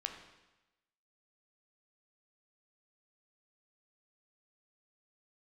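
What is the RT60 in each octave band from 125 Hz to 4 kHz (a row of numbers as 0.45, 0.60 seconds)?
1.0, 1.0, 1.0, 1.0, 1.0, 1.0 seconds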